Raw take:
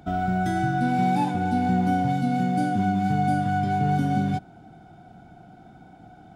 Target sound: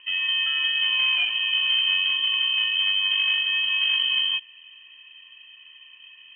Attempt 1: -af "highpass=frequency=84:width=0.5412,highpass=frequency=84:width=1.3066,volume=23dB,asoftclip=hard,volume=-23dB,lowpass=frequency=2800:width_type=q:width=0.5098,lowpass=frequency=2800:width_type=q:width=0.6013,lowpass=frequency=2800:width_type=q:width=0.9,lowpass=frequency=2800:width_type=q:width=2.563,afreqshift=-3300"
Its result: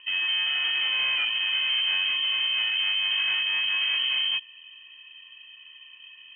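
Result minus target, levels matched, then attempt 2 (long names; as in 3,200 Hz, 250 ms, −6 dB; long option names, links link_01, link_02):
gain into a clipping stage and back: distortion +13 dB
-af "highpass=frequency=84:width=0.5412,highpass=frequency=84:width=1.3066,volume=16.5dB,asoftclip=hard,volume=-16.5dB,lowpass=frequency=2800:width_type=q:width=0.5098,lowpass=frequency=2800:width_type=q:width=0.6013,lowpass=frequency=2800:width_type=q:width=0.9,lowpass=frequency=2800:width_type=q:width=2.563,afreqshift=-3300"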